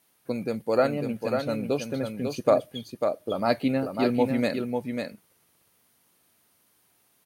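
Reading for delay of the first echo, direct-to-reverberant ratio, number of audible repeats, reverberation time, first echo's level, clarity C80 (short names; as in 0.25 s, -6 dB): 0.546 s, none, 1, none, -5.5 dB, none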